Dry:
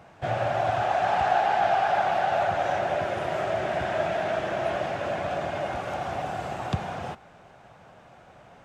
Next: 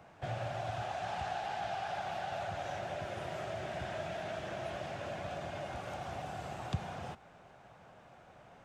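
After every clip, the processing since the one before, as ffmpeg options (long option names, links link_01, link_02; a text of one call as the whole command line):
ffmpeg -i in.wav -filter_complex "[0:a]acrossover=split=180|3000[link_01][link_02][link_03];[link_02]acompressor=threshold=-38dB:ratio=2[link_04];[link_01][link_04][link_03]amix=inputs=3:normalize=0,volume=-6dB" out.wav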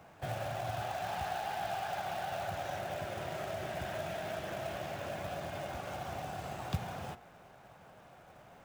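ffmpeg -i in.wav -af "acrusher=bits=4:mode=log:mix=0:aa=0.000001,bandreject=frequency=118.4:width_type=h:width=4,bandreject=frequency=236.8:width_type=h:width=4,bandreject=frequency=355.2:width_type=h:width=4,bandreject=frequency=473.6:width_type=h:width=4,bandreject=frequency=592:width_type=h:width=4,bandreject=frequency=710.4:width_type=h:width=4,bandreject=frequency=828.8:width_type=h:width=4,bandreject=frequency=947.2:width_type=h:width=4,bandreject=frequency=1065.6:width_type=h:width=4,bandreject=frequency=1184:width_type=h:width=4,bandreject=frequency=1302.4:width_type=h:width=4,bandreject=frequency=1420.8:width_type=h:width=4,bandreject=frequency=1539.2:width_type=h:width=4,bandreject=frequency=1657.6:width_type=h:width=4,bandreject=frequency=1776:width_type=h:width=4,bandreject=frequency=1894.4:width_type=h:width=4,bandreject=frequency=2012.8:width_type=h:width=4,bandreject=frequency=2131.2:width_type=h:width=4,bandreject=frequency=2249.6:width_type=h:width=4,bandreject=frequency=2368:width_type=h:width=4,bandreject=frequency=2486.4:width_type=h:width=4,bandreject=frequency=2604.8:width_type=h:width=4,bandreject=frequency=2723.2:width_type=h:width=4,bandreject=frequency=2841.6:width_type=h:width=4,bandreject=frequency=2960:width_type=h:width=4,bandreject=frequency=3078.4:width_type=h:width=4,bandreject=frequency=3196.8:width_type=h:width=4,bandreject=frequency=3315.2:width_type=h:width=4,volume=1dB" out.wav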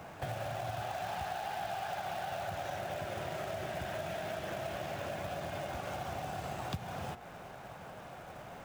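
ffmpeg -i in.wav -af "acompressor=threshold=-47dB:ratio=3,volume=8.5dB" out.wav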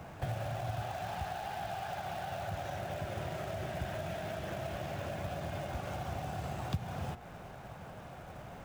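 ffmpeg -i in.wav -af "lowshelf=frequency=180:gain=10,volume=-2dB" out.wav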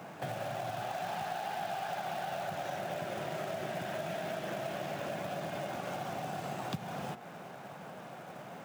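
ffmpeg -i in.wav -af "highpass=frequency=160:width=0.5412,highpass=frequency=160:width=1.3066,volume=2.5dB" out.wav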